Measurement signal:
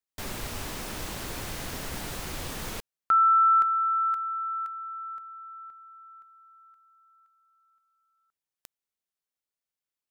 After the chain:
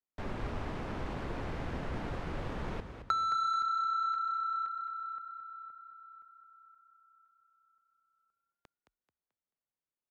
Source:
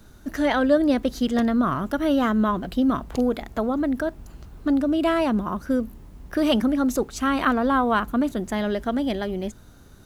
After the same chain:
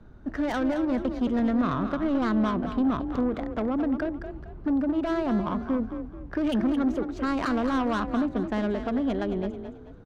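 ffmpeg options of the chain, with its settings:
ffmpeg -i in.wav -filter_complex "[0:a]adynamicsmooth=sensitivity=1:basefreq=1600,asoftclip=type=tanh:threshold=-19dB,acrossover=split=310[link_01][link_02];[link_02]acompressor=threshold=-37dB:ratio=6:attack=75:release=22:knee=2.83:detection=peak[link_03];[link_01][link_03]amix=inputs=2:normalize=0,highshelf=frequency=9200:gain=3,asplit=5[link_04][link_05][link_06][link_07][link_08];[link_05]adelay=218,afreqshift=32,volume=-9dB[link_09];[link_06]adelay=436,afreqshift=64,volume=-18.4dB[link_10];[link_07]adelay=654,afreqshift=96,volume=-27.7dB[link_11];[link_08]adelay=872,afreqshift=128,volume=-37.1dB[link_12];[link_04][link_09][link_10][link_11][link_12]amix=inputs=5:normalize=0" out.wav

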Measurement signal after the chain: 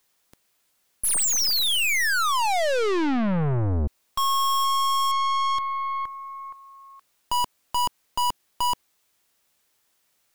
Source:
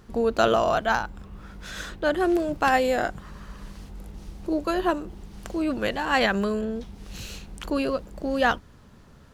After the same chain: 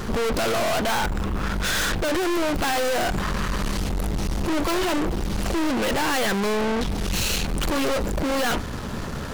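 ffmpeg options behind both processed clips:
ffmpeg -i in.wav -af "bass=frequency=250:gain=-3,treble=frequency=4000:gain=0,apsyclip=20dB,aeval=exprs='(tanh(25.1*val(0)+0.45)-tanh(0.45))/25.1':channel_layout=same,volume=5.5dB" out.wav

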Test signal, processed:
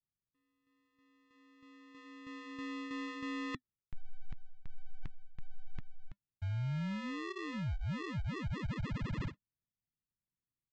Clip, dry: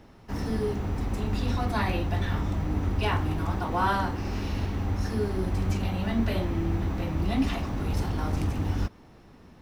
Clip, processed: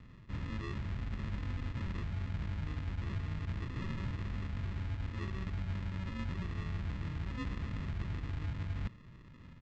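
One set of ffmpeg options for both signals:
ffmpeg -i in.wav -af "aresample=16000,acrusher=samples=21:mix=1:aa=0.000001,aresample=44100,equalizer=frequency=125:width_type=o:width=1:gain=5,equalizer=frequency=500:width_type=o:width=1:gain=-9,equalizer=frequency=2000:width_type=o:width=1:gain=5,equalizer=frequency=4000:width_type=o:width=1:gain=5,areverse,acompressor=threshold=-32dB:ratio=6,areverse,bass=frequency=250:gain=3,treble=frequency=4000:gain=-15,flanger=delay=1.5:depth=1:regen=-82:speed=0.9:shape=sinusoidal,aeval=exprs='0.0891*(cos(1*acos(clip(val(0)/0.0891,-1,1)))-cos(1*PI/2))+0.00158*(cos(4*acos(clip(val(0)/0.0891,-1,1)))-cos(4*PI/2))':channel_layout=same,volume=-1dB" out.wav

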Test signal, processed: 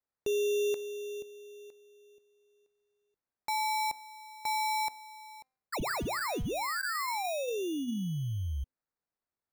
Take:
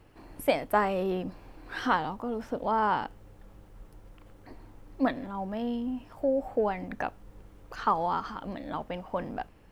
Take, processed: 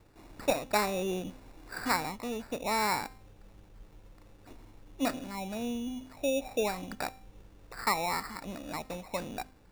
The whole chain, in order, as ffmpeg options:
ffmpeg -i in.wav -af "bandreject=frequency=258.5:width_type=h:width=4,bandreject=frequency=517:width_type=h:width=4,bandreject=frequency=775.5:width_type=h:width=4,bandreject=frequency=1034:width_type=h:width=4,bandreject=frequency=1292.5:width_type=h:width=4,bandreject=frequency=1551:width_type=h:width=4,bandreject=frequency=1809.5:width_type=h:width=4,bandreject=frequency=2068:width_type=h:width=4,bandreject=frequency=2326.5:width_type=h:width=4,bandreject=frequency=2585:width_type=h:width=4,bandreject=frequency=2843.5:width_type=h:width=4,bandreject=frequency=3102:width_type=h:width=4,bandreject=frequency=3360.5:width_type=h:width=4,bandreject=frequency=3619:width_type=h:width=4,bandreject=frequency=3877.5:width_type=h:width=4,bandreject=frequency=4136:width_type=h:width=4,bandreject=frequency=4394.5:width_type=h:width=4,bandreject=frequency=4653:width_type=h:width=4,bandreject=frequency=4911.5:width_type=h:width=4,bandreject=frequency=5170:width_type=h:width=4,bandreject=frequency=5428.5:width_type=h:width=4,bandreject=frequency=5687:width_type=h:width=4,bandreject=frequency=5945.5:width_type=h:width=4,bandreject=frequency=6204:width_type=h:width=4,bandreject=frequency=6462.5:width_type=h:width=4,bandreject=frequency=6721:width_type=h:width=4,bandreject=frequency=6979.5:width_type=h:width=4,bandreject=frequency=7238:width_type=h:width=4,bandreject=frequency=7496.5:width_type=h:width=4,bandreject=frequency=7755:width_type=h:width=4,bandreject=frequency=8013.5:width_type=h:width=4,bandreject=frequency=8272:width_type=h:width=4,bandreject=frequency=8530.5:width_type=h:width=4,bandreject=frequency=8789:width_type=h:width=4,bandreject=frequency=9047.5:width_type=h:width=4,bandreject=frequency=9306:width_type=h:width=4,bandreject=frequency=9564.5:width_type=h:width=4,bandreject=frequency=9823:width_type=h:width=4,bandreject=frequency=10081.5:width_type=h:width=4,bandreject=frequency=10340:width_type=h:width=4,acrusher=samples=14:mix=1:aa=0.000001,volume=-3dB" out.wav

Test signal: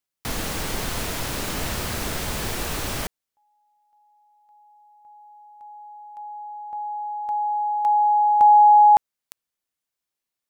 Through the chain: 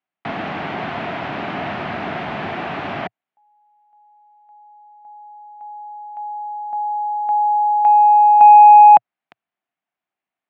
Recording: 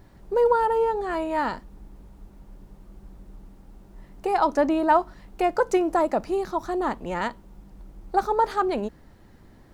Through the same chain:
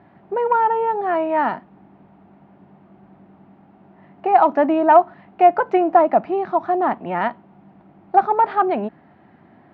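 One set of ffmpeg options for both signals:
ffmpeg -i in.wav -af "acontrast=44,highpass=frequency=120:width=0.5412,highpass=frequency=120:width=1.3066,equalizer=frequency=120:width_type=q:width=4:gain=-5,equalizer=frequency=490:width_type=q:width=4:gain=-8,equalizer=frequency=710:width_type=q:width=4:gain=9,lowpass=frequency=2700:width=0.5412,lowpass=frequency=2700:width=1.3066,volume=-1dB" out.wav

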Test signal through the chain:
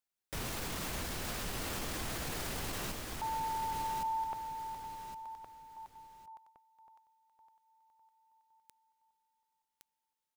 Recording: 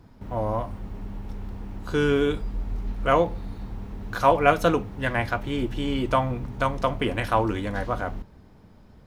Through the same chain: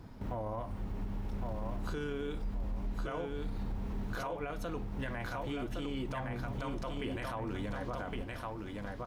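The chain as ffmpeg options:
ffmpeg -i in.wav -af "acompressor=threshold=-34dB:ratio=8,aecho=1:1:1114|2228|3342:0.562|0.141|0.0351,alimiter=level_in=6.5dB:limit=-24dB:level=0:latency=1:release=11,volume=-6.5dB,volume=1dB" out.wav

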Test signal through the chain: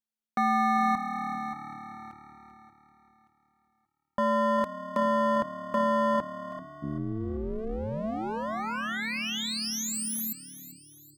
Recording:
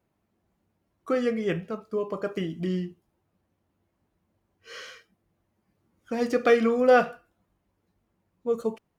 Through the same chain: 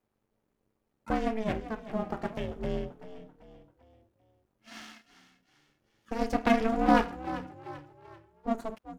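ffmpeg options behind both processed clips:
ffmpeg -i in.wav -filter_complex "[0:a]aeval=exprs='if(lt(val(0),0),0.251*val(0),val(0))':channel_layout=same,asplit=5[link_01][link_02][link_03][link_04][link_05];[link_02]adelay=389,afreqshift=37,volume=-14dB[link_06];[link_03]adelay=778,afreqshift=74,volume=-21.5dB[link_07];[link_04]adelay=1167,afreqshift=111,volume=-29.1dB[link_08];[link_05]adelay=1556,afreqshift=148,volume=-36.6dB[link_09];[link_01][link_06][link_07][link_08][link_09]amix=inputs=5:normalize=0,aeval=exprs='val(0)*sin(2*PI*220*n/s)':channel_layout=same,volume=1.5dB" out.wav

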